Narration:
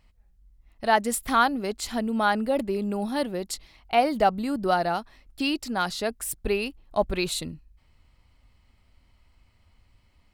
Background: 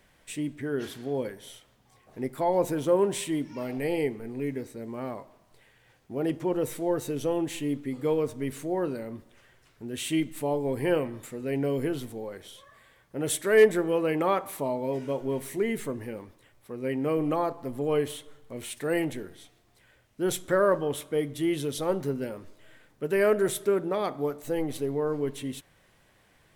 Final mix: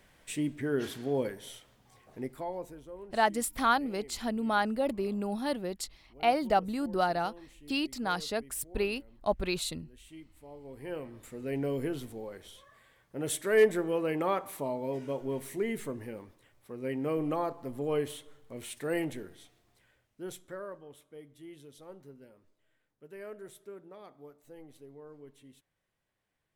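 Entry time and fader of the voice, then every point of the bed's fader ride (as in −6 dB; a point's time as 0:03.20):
2.30 s, −5.0 dB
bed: 0:02.04 0 dB
0:02.90 −23 dB
0:10.42 −23 dB
0:11.41 −4.5 dB
0:19.69 −4.5 dB
0:20.78 −21.5 dB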